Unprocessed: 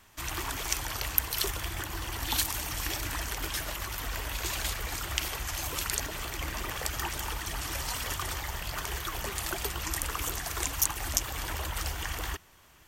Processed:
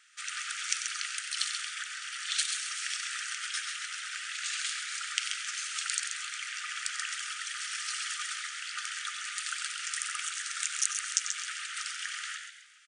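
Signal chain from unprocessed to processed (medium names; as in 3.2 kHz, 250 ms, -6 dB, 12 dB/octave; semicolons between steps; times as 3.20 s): echo from a far wall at 16 m, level -9 dB; FFT band-pass 1.2–9.8 kHz; frequency-shifting echo 133 ms, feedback 36%, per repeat +110 Hz, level -7 dB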